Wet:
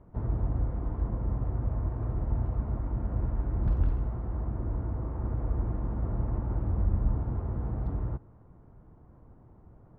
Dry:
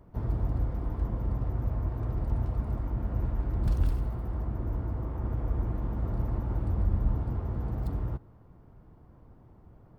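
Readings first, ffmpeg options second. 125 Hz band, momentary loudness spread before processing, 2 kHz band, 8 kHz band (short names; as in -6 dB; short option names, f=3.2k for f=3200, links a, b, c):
0.0 dB, 5 LU, -2.5 dB, n/a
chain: -af "lowpass=1.8k"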